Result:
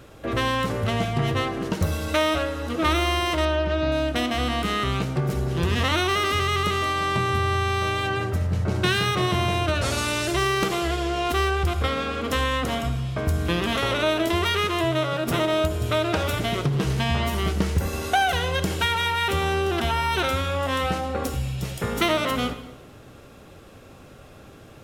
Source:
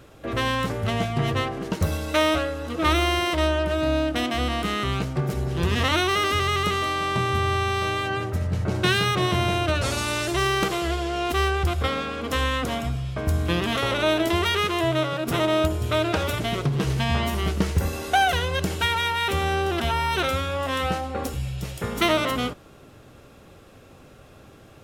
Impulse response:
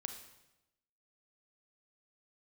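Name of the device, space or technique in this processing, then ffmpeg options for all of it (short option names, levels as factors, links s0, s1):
compressed reverb return: -filter_complex "[0:a]asettb=1/sr,asplit=3[s0][s1][s2];[s0]atrim=end=3.454[s3];[s1]atrim=start=3.45:end=3.92,asetpts=PTS-STARTPTS,afade=t=in:d=0.004:c=qsin,afade=t=out:st=0.466:d=0.004:c=qsin,lowpass=f=5600:w=0.5412,lowpass=f=5600:w=1.3066[s4];[s2]atrim=start=3.916[s5];[s3][s4]acrossfade=d=0.004:c1=hsin:c2=qsin[s6];[s6][s5]acrossfade=d=0.004:c1=qsin:c2=hsin,asplit=2[s7][s8];[1:a]atrim=start_sample=2205[s9];[s8][s9]afir=irnorm=-1:irlink=0,acompressor=threshold=0.0501:ratio=6,volume=1.78[s10];[s7][s10]amix=inputs=2:normalize=0,volume=0.562"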